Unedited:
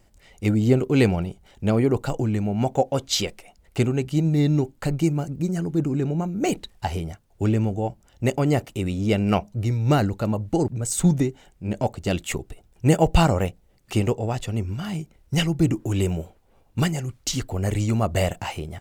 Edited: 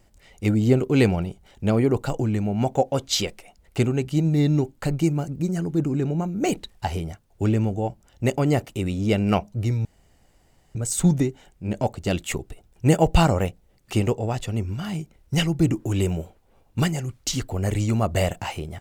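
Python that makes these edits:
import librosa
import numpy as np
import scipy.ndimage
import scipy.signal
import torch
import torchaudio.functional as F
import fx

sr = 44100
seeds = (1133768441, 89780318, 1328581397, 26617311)

y = fx.edit(x, sr, fx.room_tone_fill(start_s=9.85, length_s=0.9), tone=tone)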